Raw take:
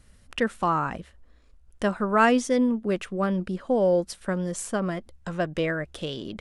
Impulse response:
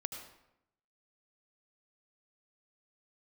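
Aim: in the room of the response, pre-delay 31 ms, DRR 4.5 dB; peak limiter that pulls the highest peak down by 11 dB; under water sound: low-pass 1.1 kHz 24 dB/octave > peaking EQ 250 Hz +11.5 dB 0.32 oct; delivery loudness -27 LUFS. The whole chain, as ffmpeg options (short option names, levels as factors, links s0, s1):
-filter_complex "[0:a]alimiter=limit=0.112:level=0:latency=1,asplit=2[s0][s1];[1:a]atrim=start_sample=2205,adelay=31[s2];[s1][s2]afir=irnorm=-1:irlink=0,volume=0.631[s3];[s0][s3]amix=inputs=2:normalize=0,lowpass=f=1100:w=0.5412,lowpass=f=1100:w=1.3066,equalizer=f=250:t=o:w=0.32:g=11.5,volume=0.708"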